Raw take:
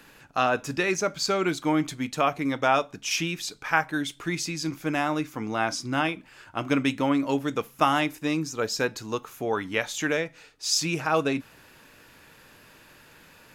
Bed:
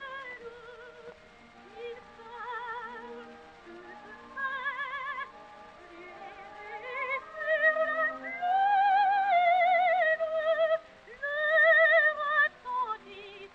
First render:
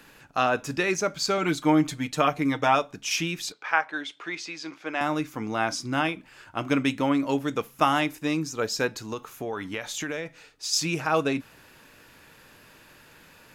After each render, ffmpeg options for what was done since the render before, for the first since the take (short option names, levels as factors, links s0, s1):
-filter_complex "[0:a]asettb=1/sr,asplit=3[s0][s1][s2];[s0]atrim=end=1.374[s3];[s1]atrim=start=1.37:end=2.75,asetpts=PTS-STARTPTS,afade=t=in:d=0.004:c=qsin,afade=t=out:st=1.376:d=0.004:c=qsin,aecho=1:1:6.6:0.55,atrim=end_sample=60858[s4];[s2]atrim=start=2.746[s5];[s3][s4]acrossfade=d=0.004:c1=hsin:c2=qsin[s6];[s6][s5]acrossfade=d=0.004:c1=qsin:c2=hsin,asettb=1/sr,asplit=3[s7][s8][s9];[s7]atrim=end=3.524[s10];[s8]atrim=start=3.52:end=5.01,asetpts=PTS-STARTPTS,afade=t=in:d=0.004:c=qsin,afade=t=out:st=1.486:d=0.004:c=qsin,highpass=470,lowpass=4000[s11];[s9]atrim=start=5.006[s12];[s10][s11]acrossfade=d=0.004:c1=hsin:c2=qsin[s13];[s13][s12]acrossfade=d=0.004:c1=qsin:c2=hsin,asplit=3[s14][s15][s16];[s14]afade=t=out:st=9.01:d=0.02[s17];[s15]acompressor=threshold=0.0447:ratio=6:attack=3.2:release=140:knee=1:detection=peak,afade=t=in:st=9.01:d=0.02,afade=t=out:st=10.72:d=0.02[s18];[s16]afade=t=in:st=10.72:d=0.02[s19];[s17][s18][s19]amix=inputs=3:normalize=0"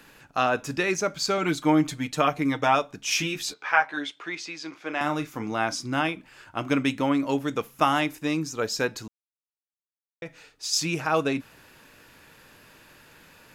-filter_complex "[0:a]asettb=1/sr,asplit=3[s0][s1][s2];[s0]atrim=end=3.064[s3];[s1]atrim=start=3.06:end=4.1,asetpts=PTS-STARTPTS,afade=t=in:d=0.004:c=qsin,afade=t=out:st=1.036:d=0.004:c=qsin,asplit=2[s4][s5];[s5]adelay=14,volume=0.794[s6];[s4][s6]amix=inputs=2:normalize=0,atrim=end_sample=45864[s7];[s2]atrim=start=4.096[s8];[s3][s7]acrossfade=d=0.004:c1=hsin:c2=qsin[s9];[s9][s8]acrossfade=d=0.004:c1=qsin:c2=hsin,asettb=1/sr,asplit=3[s10][s11][s12];[s10]atrim=end=4.714[s13];[s11]atrim=start=4.71:end=5.51,asetpts=PTS-STARTPTS,afade=t=in:d=0.004:c=qsin,afade=t=out:st=0.796:d=0.004:c=qsin,asplit=2[s14][s15];[s15]adelay=34,volume=0.316[s16];[s14][s16]amix=inputs=2:normalize=0,atrim=end_sample=35280[s17];[s12]atrim=start=5.506[s18];[s13][s17]acrossfade=d=0.004:c1=hsin:c2=qsin[s19];[s19][s18]acrossfade=d=0.004:c1=qsin:c2=hsin,asplit=3[s20][s21][s22];[s20]atrim=end=9.08,asetpts=PTS-STARTPTS,afade=t=out:st=9.076:d=0.004:c=hsin[s23];[s21]atrim=start=9.08:end=10.22,asetpts=PTS-STARTPTS,volume=0[s24];[s22]atrim=start=10.22,asetpts=PTS-STARTPTS,afade=t=in:d=0.004:c=hsin[s25];[s23][s24][s25]concat=n=3:v=0:a=1"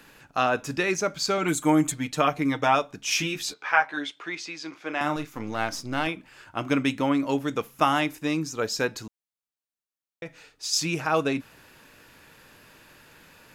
-filter_complex "[0:a]asettb=1/sr,asplit=3[s0][s1][s2];[s0]atrim=end=1.484[s3];[s1]atrim=start=1.48:end=1.92,asetpts=PTS-STARTPTS,afade=t=in:d=0.004:c=qsin,afade=t=out:st=0.436:d=0.004:c=qsin,highshelf=f=6200:t=q:w=3:g=7.5[s4];[s2]atrim=start=1.916[s5];[s3][s4]acrossfade=d=0.004:c1=hsin:c2=qsin[s6];[s6][s5]acrossfade=d=0.004:c1=qsin:c2=hsin,asettb=1/sr,asplit=3[s7][s8][s9];[s7]atrim=end=5.164[s10];[s8]atrim=start=5.16:end=6.07,asetpts=PTS-STARTPTS,afade=t=in:d=0.004:c=qsin,afade=t=out:st=0.906:d=0.004:c=qsin,aeval=exprs='if(lt(val(0),0),0.447*val(0),val(0))':c=same[s11];[s9]atrim=start=6.066[s12];[s10][s11]acrossfade=d=0.004:c1=hsin:c2=qsin[s13];[s13][s12]acrossfade=d=0.004:c1=qsin:c2=hsin"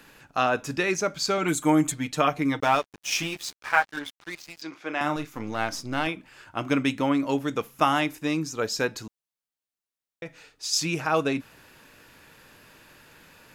-filter_complex "[0:a]asettb=1/sr,asplit=3[s0][s1][s2];[s0]atrim=end=2.604[s3];[s1]atrim=start=2.6:end=4.62,asetpts=PTS-STARTPTS,afade=t=in:d=0.004:c=qsin,afade=t=out:st=2.016:d=0.004:c=qsin,aeval=exprs='sgn(val(0))*max(abs(val(0))-0.0133,0)':c=same[s4];[s2]atrim=start=4.616[s5];[s3][s4]acrossfade=d=0.004:c1=hsin:c2=qsin[s6];[s6][s5]acrossfade=d=0.004:c1=qsin:c2=hsin"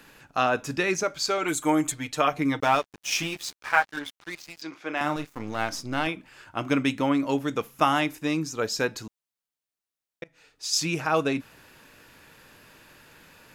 -filter_complex "[0:a]asettb=1/sr,asplit=3[s0][s1][s2];[s0]atrim=end=1.034[s3];[s1]atrim=start=1.03:end=2.33,asetpts=PTS-STARTPTS,afade=t=in:d=0.004:c=qsin,afade=t=out:st=1.296:d=0.004:c=qsin,equalizer=f=190:t=o:w=0.77:g=-11.5[s4];[s2]atrim=start=2.326[s5];[s3][s4]acrossfade=d=0.004:c1=hsin:c2=qsin[s6];[s6][s5]acrossfade=d=0.004:c1=qsin:c2=hsin,asettb=1/sr,asplit=3[s7][s8][s9];[s7]atrim=end=4.974[s10];[s8]atrim=start=4.97:end=5.7,asetpts=PTS-STARTPTS,afade=t=in:d=0.004:c=qsin,afade=t=out:st=0.726:d=0.004:c=qsin,aeval=exprs='sgn(val(0))*max(abs(val(0))-0.00376,0)':c=same[s11];[s9]atrim=start=5.696[s12];[s10][s11]acrossfade=d=0.004:c1=hsin:c2=qsin[s13];[s13][s12]acrossfade=d=0.004:c1=qsin:c2=hsin,asplit=2[s14][s15];[s14]atrim=end=10.24,asetpts=PTS-STARTPTS,afade=t=out:st=10.236:d=0.004:c=hsin:silence=0.0749894[s16];[s15]atrim=start=10.24,asetpts=PTS-STARTPTS,afade=t=in:d=0.45:silence=0.0749894[s17];[s16][s17]concat=n=2:v=0:a=1"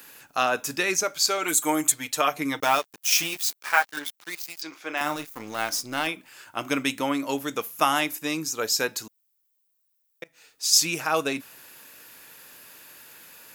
-af "aemphasis=mode=production:type=bsi"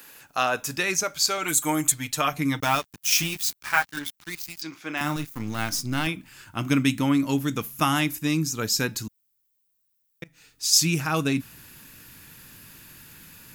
-af "asubboost=boost=11.5:cutoff=160"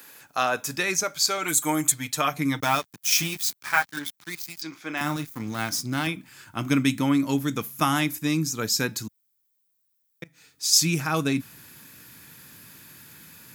-af "highpass=100,bandreject=f=2800:w=12"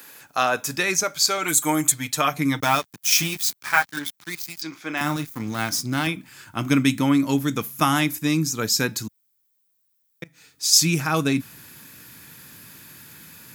-af "volume=1.41,alimiter=limit=0.708:level=0:latency=1"